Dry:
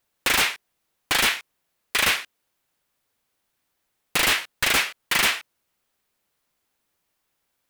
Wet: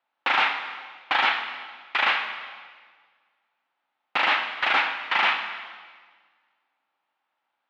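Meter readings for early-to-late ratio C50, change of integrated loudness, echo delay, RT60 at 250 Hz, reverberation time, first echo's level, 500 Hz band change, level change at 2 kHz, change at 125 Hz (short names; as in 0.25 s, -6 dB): 7.0 dB, -2.0 dB, none, 1.7 s, 1.6 s, none, -2.5 dB, 0.0 dB, under -15 dB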